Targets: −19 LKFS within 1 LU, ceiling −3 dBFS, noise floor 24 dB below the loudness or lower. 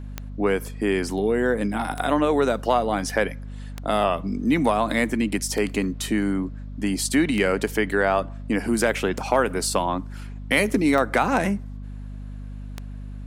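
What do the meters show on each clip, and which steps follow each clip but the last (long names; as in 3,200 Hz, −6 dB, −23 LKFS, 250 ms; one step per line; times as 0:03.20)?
number of clicks 8; mains hum 50 Hz; hum harmonics up to 250 Hz; level of the hum −32 dBFS; integrated loudness −23.0 LKFS; sample peak −6.5 dBFS; target loudness −19.0 LKFS
→ click removal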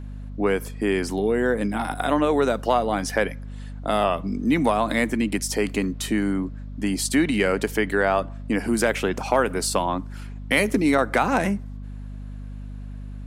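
number of clicks 0; mains hum 50 Hz; hum harmonics up to 250 Hz; level of the hum −32 dBFS
→ hum removal 50 Hz, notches 5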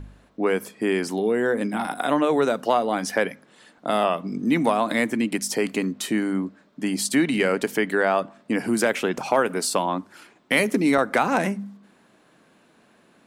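mains hum none found; integrated loudness −23.5 LKFS; sample peak −6.5 dBFS; target loudness −19.0 LKFS
→ level +4.5 dB
brickwall limiter −3 dBFS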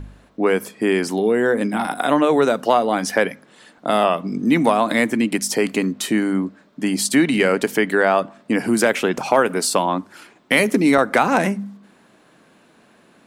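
integrated loudness −19.0 LKFS; sample peak −3.0 dBFS; background noise floor −54 dBFS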